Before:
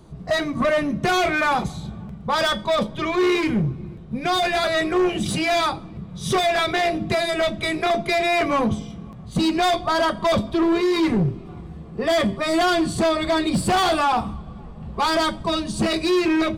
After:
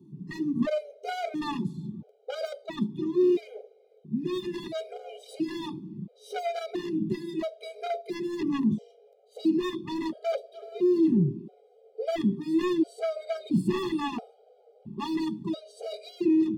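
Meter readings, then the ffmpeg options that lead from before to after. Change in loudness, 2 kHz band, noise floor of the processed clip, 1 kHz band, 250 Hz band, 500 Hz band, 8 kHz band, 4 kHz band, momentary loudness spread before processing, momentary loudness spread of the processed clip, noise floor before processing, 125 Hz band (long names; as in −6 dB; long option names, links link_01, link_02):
−8.5 dB, −19.5 dB, −61 dBFS, −16.5 dB, −4.5 dB, −9.0 dB, below −15 dB, −17.5 dB, 14 LU, 15 LU, −38 dBFS, −7.5 dB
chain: -filter_complex "[0:a]highpass=frequency=160:width=0.5412,highpass=frequency=160:width=1.3066,equalizer=frequency=7800:width_type=o:width=2.3:gain=-12.5,acrossover=split=550|3000[link_01][link_02][link_03];[link_01]acontrast=43[link_04];[link_02]acrusher=bits=2:mix=0:aa=0.5[link_05];[link_04][link_05][link_03]amix=inputs=3:normalize=0,afftfilt=real='re*gt(sin(2*PI*0.74*pts/sr)*(1-2*mod(floor(b*sr/1024/410),2)),0)':imag='im*gt(sin(2*PI*0.74*pts/sr)*(1-2*mod(floor(b*sr/1024/410),2)),0)':win_size=1024:overlap=0.75,volume=-6dB"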